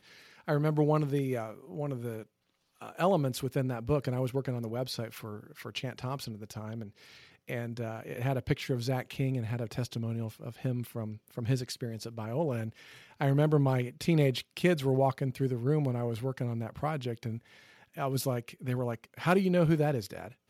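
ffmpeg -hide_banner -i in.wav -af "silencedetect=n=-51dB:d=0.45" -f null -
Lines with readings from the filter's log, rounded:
silence_start: 2.23
silence_end: 2.81 | silence_duration: 0.58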